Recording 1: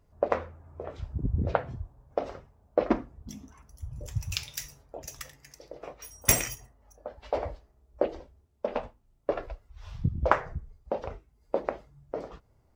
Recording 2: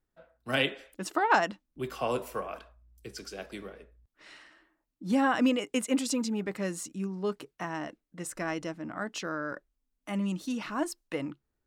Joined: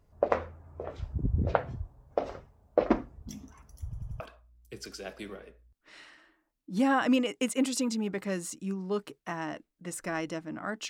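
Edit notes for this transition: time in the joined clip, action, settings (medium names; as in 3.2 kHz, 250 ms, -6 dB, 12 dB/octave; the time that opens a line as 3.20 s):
recording 1
3.84 s: stutter in place 0.09 s, 4 plays
4.20 s: go over to recording 2 from 2.53 s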